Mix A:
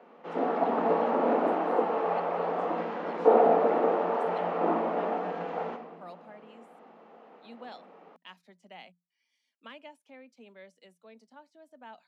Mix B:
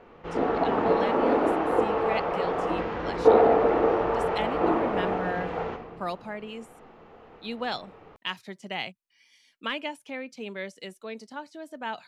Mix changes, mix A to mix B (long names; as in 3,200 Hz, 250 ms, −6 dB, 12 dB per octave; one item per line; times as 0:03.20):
speech +12.0 dB
master: remove Chebyshev high-pass with heavy ripple 170 Hz, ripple 6 dB